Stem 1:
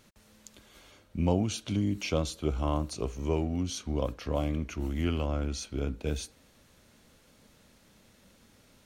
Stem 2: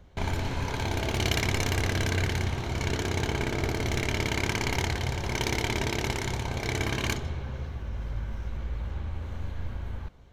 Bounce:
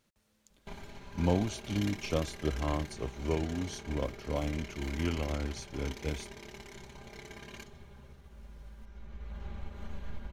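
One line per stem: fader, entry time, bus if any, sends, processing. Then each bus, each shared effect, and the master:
-1.0 dB, 0.00 s, no send, bit crusher 12-bit
-1.5 dB, 0.50 s, no send, comb 5 ms, depth 98%; compression 2.5:1, threshold -29 dBFS, peak gain reduction 7 dB; auto duck -7 dB, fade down 0.90 s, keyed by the first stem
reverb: none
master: upward expansion 1.5:1, over -49 dBFS

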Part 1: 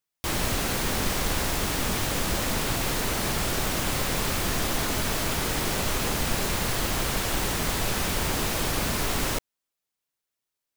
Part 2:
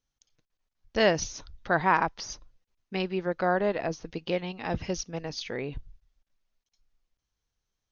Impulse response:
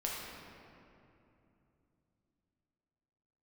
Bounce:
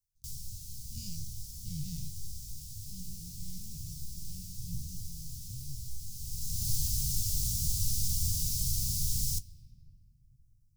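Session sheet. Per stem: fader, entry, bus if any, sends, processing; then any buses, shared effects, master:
+3.0 dB, 0.00 s, send -19 dB, auto duck -19 dB, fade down 0.45 s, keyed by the second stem
-4.0 dB, 0.00 s, no send, every event in the spectrogram widened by 120 ms; sliding maximum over 17 samples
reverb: on, RT60 2.9 s, pre-delay 6 ms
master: elliptic band-stop 130–5300 Hz, stop band 70 dB; flange 1.8 Hz, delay 9.4 ms, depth 8.5 ms, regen +57%

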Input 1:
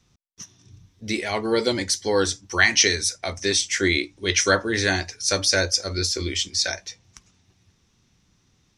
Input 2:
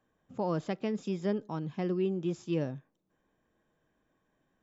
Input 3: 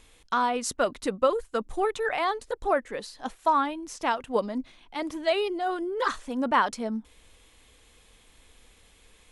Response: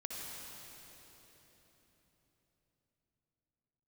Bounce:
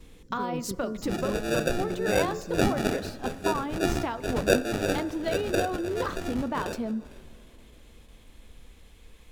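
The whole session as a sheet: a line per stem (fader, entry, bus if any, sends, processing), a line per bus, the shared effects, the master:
-4.5 dB, 0.00 s, send -15 dB, echo send -18.5 dB, tone controls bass -5 dB, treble -13 dB; sample-and-hold 42×
-4.5 dB, 0.00 s, no send, no echo send, FFT band-reject 540–4100 Hz; level flattener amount 50%
-1.0 dB, 0.00 s, send -23 dB, no echo send, gate with hold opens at -47 dBFS; bass shelf 350 Hz +10 dB; compression, threshold -27 dBFS, peak gain reduction 12.5 dB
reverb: on, RT60 4.1 s, pre-delay 55 ms
echo: delay 453 ms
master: de-hum 88.59 Hz, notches 23; decimation joined by straight lines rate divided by 2×

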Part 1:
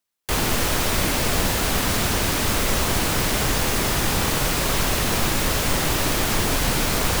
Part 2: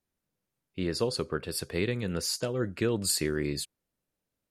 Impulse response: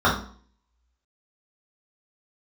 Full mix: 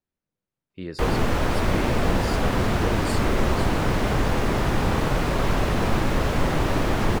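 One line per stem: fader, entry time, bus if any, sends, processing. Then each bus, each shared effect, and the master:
+2.0 dB, 0.70 s, no send, treble shelf 2.1 kHz -10.5 dB
-3.0 dB, 0.00 s, no send, none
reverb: none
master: low-pass 3.3 kHz 6 dB/octave

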